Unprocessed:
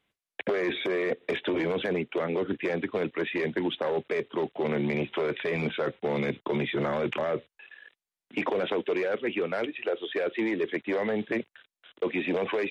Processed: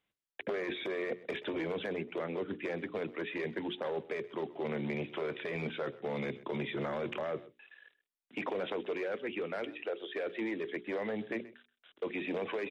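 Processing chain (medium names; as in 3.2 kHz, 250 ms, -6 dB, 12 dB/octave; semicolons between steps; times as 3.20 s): hum notches 60/120/180/240/300/360/420 Hz; delay 129 ms -19 dB; trim -7.5 dB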